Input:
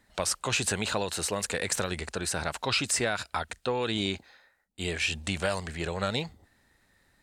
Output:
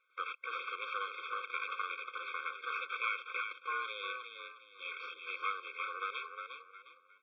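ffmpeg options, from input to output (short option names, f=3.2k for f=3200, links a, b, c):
-filter_complex "[0:a]aeval=exprs='abs(val(0))':c=same,asplit=5[a][b][c][d][e];[b]adelay=358,afreqshift=51,volume=-6.5dB[f];[c]adelay=716,afreqshift=102,volume=-16.7dB[g];[d]adelay=1074,afreqshift=153,volume=-26.8dB[h];[e]adelay=1432,afreqshift=204,volume=-37dB[i];[a][f][g][h][i]amix=inputs=5:normalize=0,highpass=f=540:t=q:w=0.5412,highpass=f=540:t=q:w=1.307,lowpass=f=2.9k:t=q:w=0.5176,lowpass=f=2.9k:t=q:w=0.7071,lowpass=f=2.9k:t=q:w=1.932,afreqshift=88,afftfilt=real='re*eq(mod(floor(b*sr/1024/530),2),0)':imag='im*eq(mod(floor(b*sr/1024/530),2),0)':win_size=1024:overlap=0.75,volume=1dB"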